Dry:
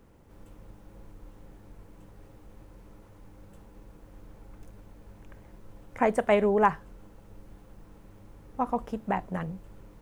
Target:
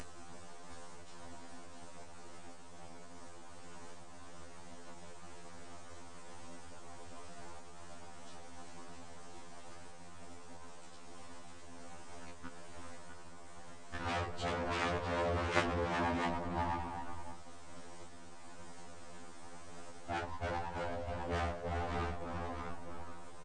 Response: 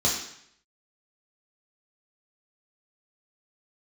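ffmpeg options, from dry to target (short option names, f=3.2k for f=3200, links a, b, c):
-filter_complex "[0:a]aecho=1:1:6.7:0.98,aecho=1:1:279:0.473,asplit=2[a][b];[1:a]atrim=start_sample=2205,adelay=142[c];[b][c]afir=irnorm=-1:irlink=0,volume=-17dB[d];[a][d]amix=inputs=2:normalize=0,acompressor=mode=upward:threshold=-27dB:ratio=2.5,highpass=820,equalizer=f=7.7k:w=0.74:g=-7,aeval=exprs='abs(val(0))':c=same,aeval=exprs='0.355*(cos(1*acos(clip(val(0)/0.355,-1,1)))-cos(1*PI/2))+0.112*(cos(4*acos(clip(val(0)/0.355,-1,1)))-cos(4*PI/2))':c=same,afftfilt=real='re*lt(hypot(re,im),0.1)':imag='im*lt(hypot(re,im),0.1)':win_size=1024:overlap=0.75,asetrate=18846,aresample=44100,afftfilt=real='re*2*eq(mod(b,4),0)':imag='im*2*eq(mod(b,4),0)':win_size=2048:overlap=0.75,volume=6dB"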